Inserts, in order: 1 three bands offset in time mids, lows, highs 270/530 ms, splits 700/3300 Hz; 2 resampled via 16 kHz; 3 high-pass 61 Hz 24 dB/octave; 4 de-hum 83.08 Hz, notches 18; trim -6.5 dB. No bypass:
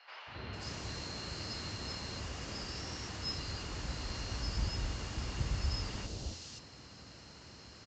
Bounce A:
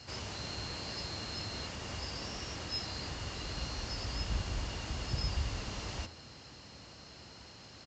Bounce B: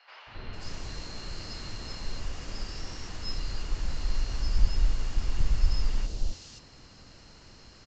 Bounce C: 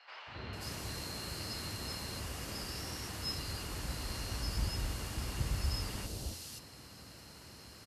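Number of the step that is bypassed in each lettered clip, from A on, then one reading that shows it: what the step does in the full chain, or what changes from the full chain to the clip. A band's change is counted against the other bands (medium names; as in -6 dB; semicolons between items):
1, 125 Hz band -1.5 dB; 3, 125 Hz band +4.0 dB; 2, 8 kHz band +3.5 dB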